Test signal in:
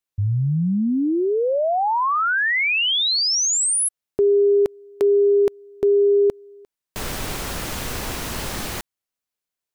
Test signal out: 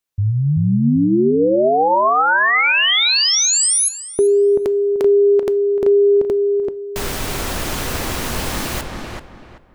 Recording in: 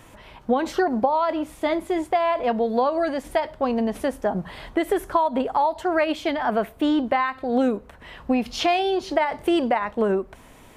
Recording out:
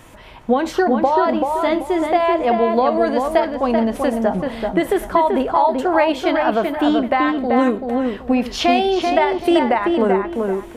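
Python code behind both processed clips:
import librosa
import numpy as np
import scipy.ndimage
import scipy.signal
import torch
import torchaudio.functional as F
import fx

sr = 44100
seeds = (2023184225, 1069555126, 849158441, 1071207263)

y = fx.echo_filtered(x, sr, ms=385, feedback_pct=29, hz=2400.0, wet_db=-3.5)
y = fx.rev_double_slope(y, sr, seeds[0], early_s=0.34, late_s=1.9, knee_db=-27, drr_db=15.5)
y = F.gain(torch.from_numpy(y), 4.0).numpy()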